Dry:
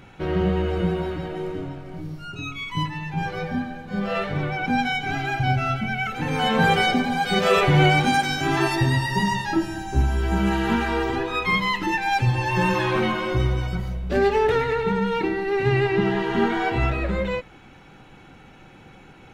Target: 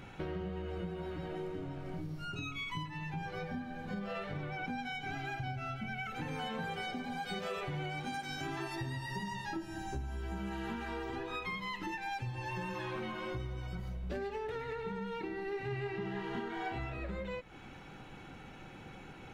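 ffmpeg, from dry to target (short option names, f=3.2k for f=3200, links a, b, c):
-filter_complex "[0:a]acompressor=threshold=-34dB:ratio=8,asettb=1/sr,asplit=3[a][b][c];[a]atrim=end=15.484[d];[b]atrim=start=15.48:end=16.98,asetpts=PTS-STARTPTS,afade=t=in:d=0.004:c=qsin,afade=t=out:st=1.496:d=0.004:c=qsin,asplit=2[e][f];[f]adelay=37,volume=-6dB[g];[e][g]amix=inputs=2:normalize=0,atrim=end_sample=66150[h];[c]atrim=start=16.976[i];[d][h]acrossfade=d=0.004:c1=hsin:c2=qsin[j];[j][i]acrossfade=d=0.004:c1=qsin:c2=hsin,volume=-3dB"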